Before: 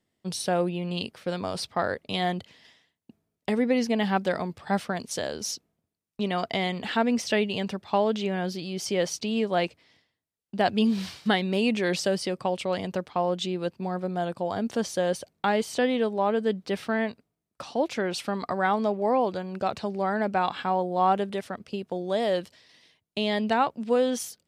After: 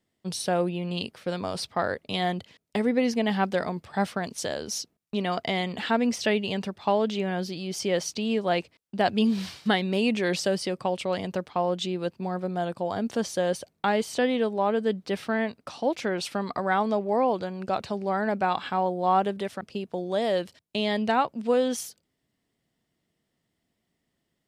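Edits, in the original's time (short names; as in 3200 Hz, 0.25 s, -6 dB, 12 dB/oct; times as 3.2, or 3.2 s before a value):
shrink pauses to 10%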